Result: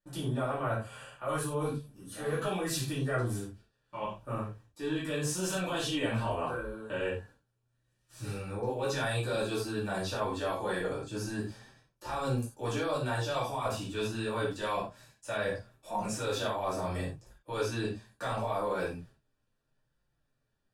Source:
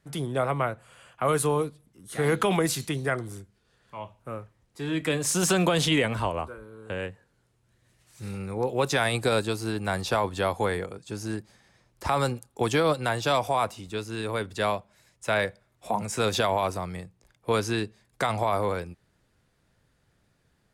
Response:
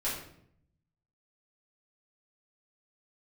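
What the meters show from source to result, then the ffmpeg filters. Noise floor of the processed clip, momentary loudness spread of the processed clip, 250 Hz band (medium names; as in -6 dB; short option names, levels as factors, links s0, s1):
-78 dBFS, 9 LU, -5.5 dB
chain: -filter_complex "[0:a]asplit=2[s0][s1];[s1]alimiter=limit=0.0794:level=0:latency=1,volume=1[s2];[s0][s2]amix=inputs=2:normalize=0,flanger=delay=5.5:depth=4.8:regen=-24:speed=0.75:shape=sinusoidal,agate=range=0.126:threshold=0.00141:ratio=16:detection=peak,asuperstop=centerf=2100:order=4:qfactor=6.7,areverse,acompressor=threshold=0.0224:ratio=6,areverse[s3];[1:a]atrim=start_sample=2205,afade=t=out:st=0.16:d=0.01,atrim=end_sample=7497[s4];[s3][s4]afir=irnorm=-1:irlink=0,volume=0.794"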